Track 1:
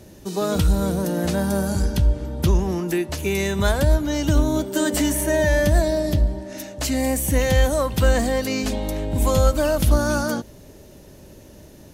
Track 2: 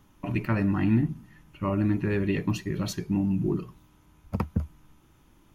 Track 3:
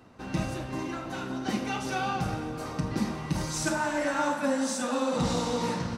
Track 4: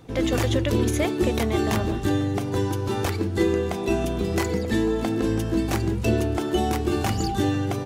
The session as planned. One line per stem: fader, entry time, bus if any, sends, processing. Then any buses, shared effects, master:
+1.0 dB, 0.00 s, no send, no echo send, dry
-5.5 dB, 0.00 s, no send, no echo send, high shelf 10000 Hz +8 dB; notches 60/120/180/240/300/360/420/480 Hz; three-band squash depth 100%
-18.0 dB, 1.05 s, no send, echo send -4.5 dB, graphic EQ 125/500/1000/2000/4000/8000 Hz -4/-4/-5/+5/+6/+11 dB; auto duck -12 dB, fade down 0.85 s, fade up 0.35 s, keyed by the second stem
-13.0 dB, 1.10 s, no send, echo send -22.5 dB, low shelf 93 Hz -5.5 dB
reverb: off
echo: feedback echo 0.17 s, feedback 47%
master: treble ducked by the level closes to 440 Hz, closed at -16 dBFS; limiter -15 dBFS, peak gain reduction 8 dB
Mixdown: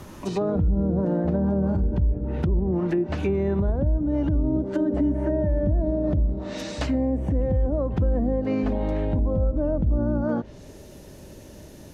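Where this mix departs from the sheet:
stem 2 -5.5 dB -> -12.0 dB; stem 3 -18.0 dB -> -10.5 dB; stem 4 -13.0 dB -> -20.0 dB

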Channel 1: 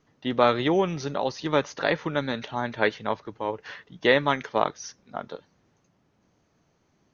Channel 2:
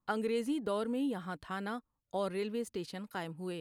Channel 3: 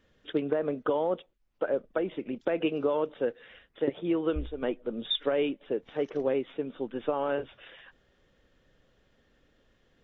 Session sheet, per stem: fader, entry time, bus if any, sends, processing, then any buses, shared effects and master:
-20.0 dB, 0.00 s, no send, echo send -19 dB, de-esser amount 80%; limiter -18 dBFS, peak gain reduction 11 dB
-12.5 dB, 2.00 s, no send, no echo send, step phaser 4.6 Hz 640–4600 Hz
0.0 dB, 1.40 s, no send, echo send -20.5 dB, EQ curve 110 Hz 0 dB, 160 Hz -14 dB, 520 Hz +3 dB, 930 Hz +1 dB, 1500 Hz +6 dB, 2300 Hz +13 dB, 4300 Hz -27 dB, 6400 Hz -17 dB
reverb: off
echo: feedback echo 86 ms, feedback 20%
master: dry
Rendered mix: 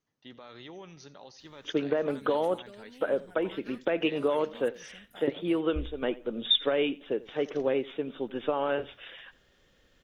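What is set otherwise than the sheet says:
stem 1: missing de-esser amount 80%; stem 3: missing EQ curve 110 Hz 0 dB, 160 Hz -14 dB, 520 Hz +3 dB, 930 Hz +1 dB, 1500 Hz +6 dB, 2300 Hz +13 dB, 4300 Hz -27 dB, 6400 Hz -17 dB; master: extra high shelf 2400 Hz +9 dB

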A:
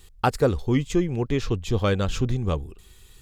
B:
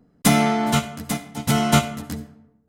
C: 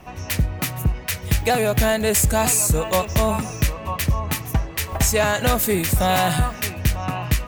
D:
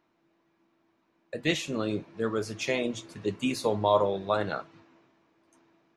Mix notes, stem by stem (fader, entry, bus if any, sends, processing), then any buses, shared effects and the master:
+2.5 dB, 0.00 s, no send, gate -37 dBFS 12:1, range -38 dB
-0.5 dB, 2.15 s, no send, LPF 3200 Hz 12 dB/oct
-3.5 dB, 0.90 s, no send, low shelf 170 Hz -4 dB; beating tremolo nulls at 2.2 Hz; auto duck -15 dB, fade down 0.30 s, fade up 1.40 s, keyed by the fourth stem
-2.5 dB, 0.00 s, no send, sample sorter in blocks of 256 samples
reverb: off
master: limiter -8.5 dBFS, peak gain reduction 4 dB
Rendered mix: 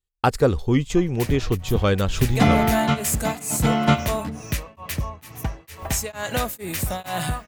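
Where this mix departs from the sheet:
stem D: muted; master: missing limiter -8.5 dBFS, peak gain reduction 4 dB

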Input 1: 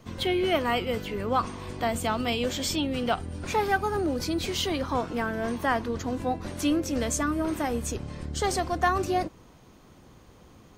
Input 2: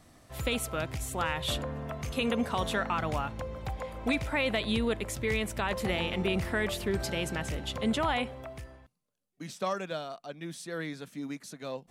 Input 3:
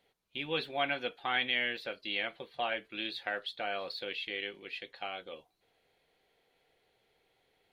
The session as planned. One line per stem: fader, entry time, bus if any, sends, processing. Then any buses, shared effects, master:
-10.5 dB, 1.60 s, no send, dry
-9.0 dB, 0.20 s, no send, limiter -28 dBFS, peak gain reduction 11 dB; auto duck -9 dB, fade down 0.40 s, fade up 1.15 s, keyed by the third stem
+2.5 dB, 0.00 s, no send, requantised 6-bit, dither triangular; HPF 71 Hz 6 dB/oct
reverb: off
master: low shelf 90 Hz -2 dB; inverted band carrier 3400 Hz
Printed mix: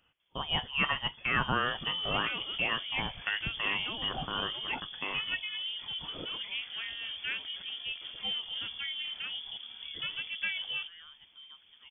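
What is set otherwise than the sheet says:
stem 2 -9.0 dB -> -15.0 dB; stem 3: missing requantised 6-bit, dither triangular; master: missing low shelf 90 Hz -2 dB

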